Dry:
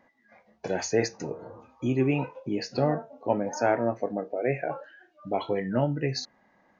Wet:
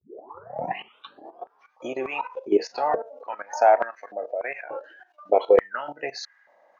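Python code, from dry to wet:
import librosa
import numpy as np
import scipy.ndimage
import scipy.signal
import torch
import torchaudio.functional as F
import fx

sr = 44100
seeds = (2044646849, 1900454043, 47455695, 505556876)

y = fx.tape_start_head(x, sr, length_s=1.8)
y = fx.level_steps(y, sr, step_db=14)
y = fx.filter_held_highpass(y, sr, hz=3.4, low_hz=400.0, high_hz=1600.0)
y = F.gain(torch.from_numpy(y), 5.5).numpy()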